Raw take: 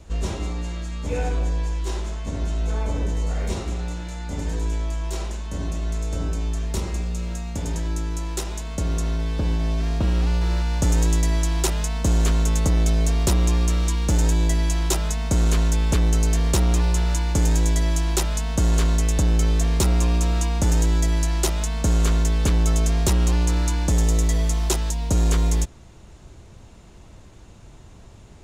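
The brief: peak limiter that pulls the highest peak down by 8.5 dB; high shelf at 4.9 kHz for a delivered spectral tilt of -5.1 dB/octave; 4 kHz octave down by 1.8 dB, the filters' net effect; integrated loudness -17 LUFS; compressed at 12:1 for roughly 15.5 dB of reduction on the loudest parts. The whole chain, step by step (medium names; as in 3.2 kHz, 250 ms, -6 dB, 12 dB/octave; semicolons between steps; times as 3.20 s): peaking EQ 4 kHz -7 dB; treble shelf 4.9 kHz +8.5 dB; compression 12:1, threshold -32 dBFS; trim +20.5 dB; peak limiter -8 dBFS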